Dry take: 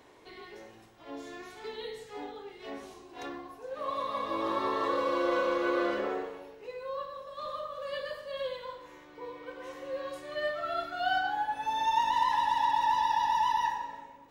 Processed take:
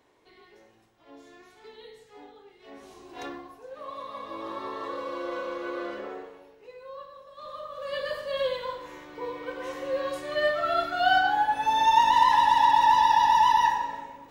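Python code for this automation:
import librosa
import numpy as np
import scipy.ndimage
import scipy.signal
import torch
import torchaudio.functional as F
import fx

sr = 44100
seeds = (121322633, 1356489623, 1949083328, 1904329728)

y = fx.gain(x, sr, db=fx.line((2.66, -7.5), (3.1, 4.5), (3.88, -5.0), (7.36, -5.0), (8.17, 7.5)))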